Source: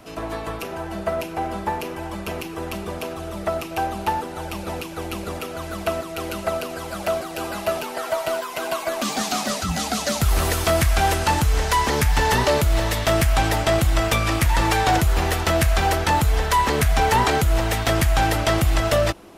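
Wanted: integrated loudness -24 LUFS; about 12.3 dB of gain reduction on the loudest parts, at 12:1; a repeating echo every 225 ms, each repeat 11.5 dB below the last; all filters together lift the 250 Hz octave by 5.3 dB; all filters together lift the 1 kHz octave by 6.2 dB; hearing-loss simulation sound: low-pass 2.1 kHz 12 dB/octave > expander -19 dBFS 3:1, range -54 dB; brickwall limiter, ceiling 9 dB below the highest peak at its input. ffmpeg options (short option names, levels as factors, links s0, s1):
-af "equalizer=f=250:t=o:g=7,equalizer=f=1000:t=o:g=7.5,acompressor=threshold=0.0891:ratio=12,alimiter=limit=0.106:level=0:latency=1,lowpass=2100,aecho=1:1:225|450|675:0.266|0.0718|0.0194,agate=range=0.002:threshold=0.112:ratio=3,volume=10.6"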